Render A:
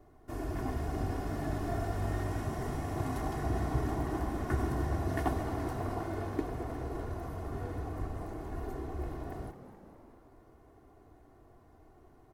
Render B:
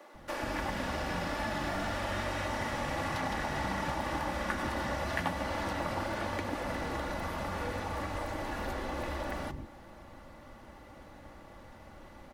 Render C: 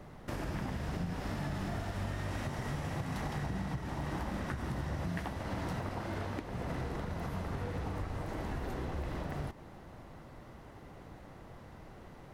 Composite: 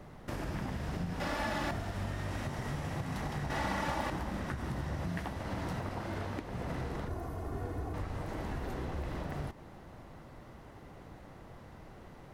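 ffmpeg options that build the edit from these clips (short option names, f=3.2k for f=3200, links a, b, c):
-filter_complex "[1:a]asplit=2[a][b];[2:a]asplit=4[c][d][e][f];[c]atrim=end=1.202[g];[a]atrim=start=1.198:end=1.712[h];[d]atrim=start=1.708:end=3.502[i];[b]atrim=start=3.498:end=4.102[j];[e]atrim=start=4.098:end=7.082[k];[0:a]atrim=start=7.078:end=7.942[l];[f]atrim=start=7.938[m];[g][h]acrossfade=d=0.004:c1=hsin:c2=hsin[n];[n][i]acrossfade=d=0.004:c1=hsin:c2=hsin[o];[o][j]acrossfade=d=0.004:c1=hsin:c2=hsin[p];[p][k]acrossfade=d=0.004:c1=hsin:c2=hsin[q];[q][l]acrossfade=d=0.004:c1=hsin:c2=hsin[r];[r][m]acrossfade=d=0.004:c1=hsin:c2=hsin"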